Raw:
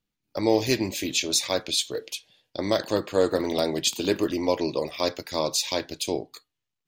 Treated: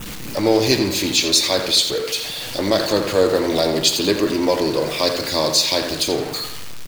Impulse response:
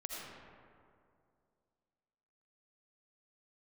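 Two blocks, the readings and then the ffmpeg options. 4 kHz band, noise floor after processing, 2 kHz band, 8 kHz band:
+10.0 dB, -30 dBFS, +8.5 dB, +7.0 dB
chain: -filter_complex "[0:a]aeval=exprs='val(0)+0.5*0.0376*sgn(val(0))':c=same,adynamicequalizer=threshold=0.00891:dfrequency=4400:dqfactor=4.4:tfrequency=4400:tqfactor=4.4:attack=5:release=100:ratio=0.375:range=3.5:mode=boostabove:tftype=bell,asplit=2[a][b];[b]adelay=84,lowpass=f=4.7k:p=1,volume=-8dB,asplit=2[c][d];[d]adelay=84,lowpass=f=4.7k:p=1,volume=0.48,asplit=2[e][f];[f]adelay=84,lowpass=f=4.7k:p=1,volume=0.48,asplit=2[g][h];[h]adelay=84,lowpass=f=4.7k:p=1,volume=0.48,asplit=2[i][j];[j]adelay=84,lowpass=f=4.7k:p=1,volume=0.48,asplit=2[k][l];[l]adelay=84,lowpass=f=4.7k:p=1,volume=0.48[m];[c][e][g][i][k][m]amix=inputs=6:normalize=0[n];[a][n]amix=inputs=2:normalize=0,volume=4dB"

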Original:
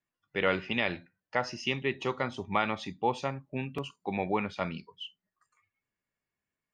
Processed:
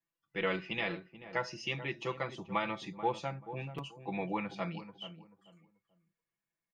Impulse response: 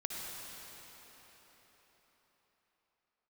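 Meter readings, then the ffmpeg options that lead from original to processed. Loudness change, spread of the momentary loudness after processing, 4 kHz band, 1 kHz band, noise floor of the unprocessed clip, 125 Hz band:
-5.0 dB, 10 LU, -5.0 dB, -5.0 dB, under -85 dBFS, -3.5 dB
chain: -filter_complex "[0:a]aecho=1:1:6:0.92,asplit=2[a][b];[b]adelay=435,lowpass=f=970:p=1,volume=-11dB,asplit=2[c][d];[d]adelay=435,lowpass=f=970:p=1,volume=0.28,asplit=2[e][f];[f]adelay=435,lowpass=f=970:p=1,volume=0.28[g];[c][e][g]amix=inputs=3:normalize=0[h];[a][h]amix=inputs=2:normalize=0,volume=-7.5dB"

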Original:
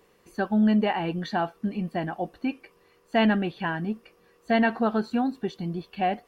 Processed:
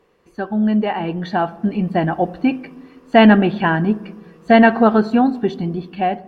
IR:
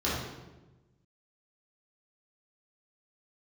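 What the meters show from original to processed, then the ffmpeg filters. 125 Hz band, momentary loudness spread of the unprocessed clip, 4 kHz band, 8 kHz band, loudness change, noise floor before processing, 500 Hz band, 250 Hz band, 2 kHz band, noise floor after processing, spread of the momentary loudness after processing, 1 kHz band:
+9.5 dB, 11 LU, +7.5 dB, n/a, +10.0 dB, -62 dBFS, +11.0 dB, +9.5 dB, +9.5 dB, -53 dBFS, 13 LU, +10.0 dB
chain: -filter_complex "[0:a]lowpass=f=2.8k:p=1,dynaudnorm=f=610:g=5:m=11.5dB,asplit=2[a][b];[1:a]atrim=start_sample=2205,asetrate=39690,aresample=44100,lowpass=2.4k[c];[b][c]afir=irnorm=-1:irlink=0,volume=-28dB[d];[a][d]amix=inputs=2:normalize=0,volume=2dB"

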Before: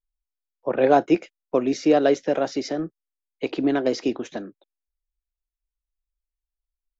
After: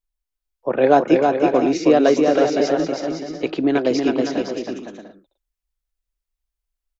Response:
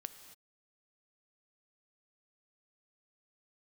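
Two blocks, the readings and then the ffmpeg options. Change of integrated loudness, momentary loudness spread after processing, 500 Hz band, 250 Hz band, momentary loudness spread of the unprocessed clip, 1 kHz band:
+4.5 dB, 13 LU, +5.0 dB, +5.5 dB, 15 LU, +5.5 dB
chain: -af "aecho=1:1:320|512|627.2|696.3|737.8:0.631|0.398|0.251|0.158|0.1,volume=3dB"

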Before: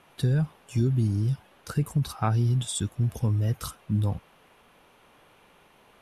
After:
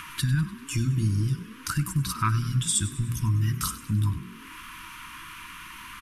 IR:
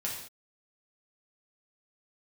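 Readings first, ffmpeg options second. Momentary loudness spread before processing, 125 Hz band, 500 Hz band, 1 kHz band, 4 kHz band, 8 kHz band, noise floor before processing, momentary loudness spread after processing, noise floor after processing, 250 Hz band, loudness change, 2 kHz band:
6 LU, -0.5 dB, under -10 dB, +3.0 dB, +5.5 dB, +8.5 dB, -59 dBFS, 16 LU, -45 dBFS, -1.0 dB, +0.5 dB, +8.5 dB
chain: -filter_complex "[0:a]equalizer=f=230:w=0.39:g=-10,bandreject=f=60:t=h:w=6,bandreject=f=120:t=h:w=6,bandreject=f=180:t=h:w=6,bandreject=f=240:t=h:w=6,bandreject=f=300:t=h:w=6,afftfilt=real='re*(1-between(b*sr/4096,350,920))':imag='im*(1-between(b*sr/4096,350,920))':win_size=4096:overlap=0.75,equalizer=f=3.8k:w=2.6:g=-5,asplit=2[a][b];[b]acompressor=mode=upward:threshold=-28dB:ratio=2.5,volume=-1dB[c];[a][c]amix=inputs=2:normalize=0,asplit=6[d][e][f][g][h][i];[e]adelay=98,afreqshift=41,volume=-15.5dB[j];[f]adelay=196,afreqshift=82,volume=-20.9dB[k];[g]adelay=294,afreqshift=123,volume=-26.2dB[l];[h]adelay=392,afreqshift=164,volume=-31.6dB[m];[i]adelay=490,afreqshift=205,volume=-36.9dB[n];[d][j][k][l][m][n]amix=inputs=6:normalize=0,volume=2dB"

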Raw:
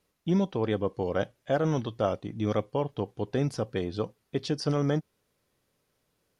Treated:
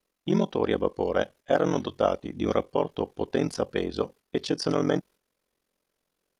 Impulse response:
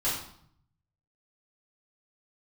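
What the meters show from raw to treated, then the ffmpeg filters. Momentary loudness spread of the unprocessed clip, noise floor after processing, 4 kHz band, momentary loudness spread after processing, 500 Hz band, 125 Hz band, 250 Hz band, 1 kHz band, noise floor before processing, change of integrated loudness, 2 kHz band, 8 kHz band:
6 LU, -81 dBFS, +4.0 dB, 6 LU, +3.5 dB, -4.0 dB, +1.5 dB, +4.0 dB, -76 dBFS, +2.0 dB, +4.0 dB, +4.0 dB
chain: -af "aeval=exprs='val(0)*sin(2*PI*22*n/s)':c=same,agate=range=-8dB:threshold=-52dB:ratio=16:detection=peak,equalizer=f=110:t=o:w=0.96:g=-14,volume=7dB"

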